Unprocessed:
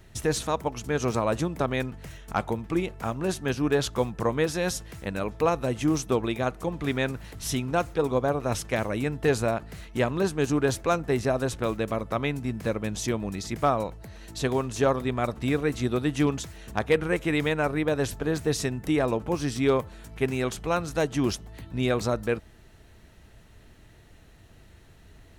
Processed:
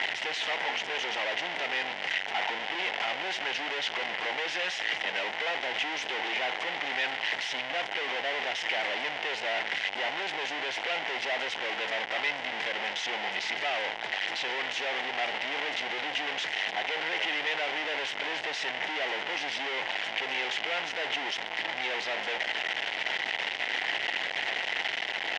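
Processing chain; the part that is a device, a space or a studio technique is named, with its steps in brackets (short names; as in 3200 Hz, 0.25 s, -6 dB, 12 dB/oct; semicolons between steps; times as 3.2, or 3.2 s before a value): home computer beeper (infinite clipping; speaker cabinet 760–4400 Hz, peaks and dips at 780 Hz +6 dB, 1200 Hz -10 dB, 2000 Hz +9 dB, 3000 Hz +7 dB, 4300 Hz -5 dB)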